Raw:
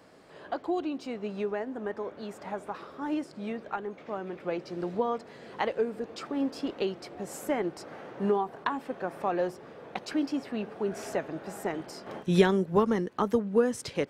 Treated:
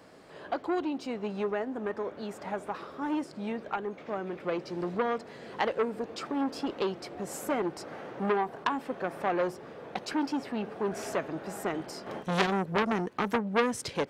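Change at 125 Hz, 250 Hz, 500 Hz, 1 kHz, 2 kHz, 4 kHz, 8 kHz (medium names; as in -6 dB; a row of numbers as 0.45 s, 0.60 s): -3.0 dB, -1.5 dB, -2.0 dB, +1.5 dB, +3.0 dB, +2.0 dB, +1.5 dB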